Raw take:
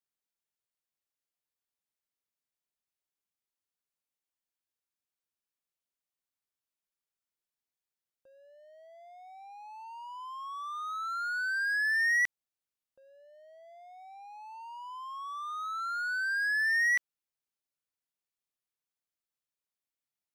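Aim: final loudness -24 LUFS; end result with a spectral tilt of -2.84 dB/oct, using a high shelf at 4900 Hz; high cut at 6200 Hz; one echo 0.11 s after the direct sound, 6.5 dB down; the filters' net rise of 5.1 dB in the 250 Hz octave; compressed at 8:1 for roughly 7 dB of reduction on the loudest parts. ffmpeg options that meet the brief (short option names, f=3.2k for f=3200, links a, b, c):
-af "lowpass=6.2k,equalizer=f=250:t=o:g=6.5,highshelf=f=4.9k:g=-5.5,acompressor=threshold=-33dB:ratio=8,aecho=1:1:110:0.473,volume=11.5dB"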